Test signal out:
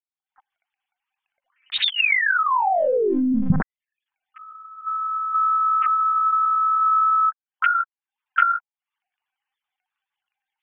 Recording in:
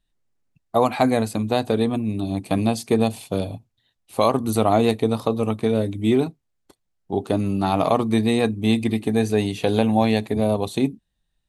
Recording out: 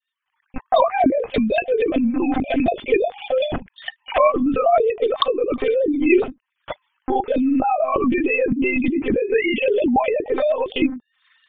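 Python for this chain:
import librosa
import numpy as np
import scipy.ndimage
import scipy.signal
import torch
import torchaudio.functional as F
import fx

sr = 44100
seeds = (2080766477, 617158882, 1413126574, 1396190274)

y = fx.sine_speech(x, sr)
y = fx.recorder_agc(y, sr, target_db=-14.0, rise_db_per_s=73.0, max_gain_db=30)
y = fx.lpc_monotone(y, sr, seeds[0], pitch_hz=260.0, order=16)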